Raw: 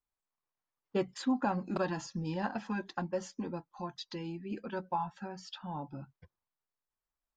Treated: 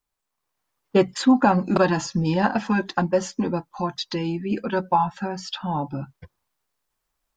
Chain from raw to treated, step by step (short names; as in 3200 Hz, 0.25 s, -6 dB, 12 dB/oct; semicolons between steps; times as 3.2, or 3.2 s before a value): AGC gain up to 5 dB; gain +9 dB